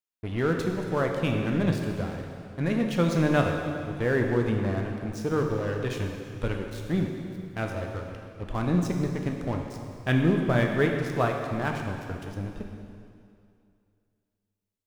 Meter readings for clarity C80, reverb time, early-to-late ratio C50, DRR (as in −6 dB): 4.5 dB, 2.4 s, 3.5 dB, 1.5 dB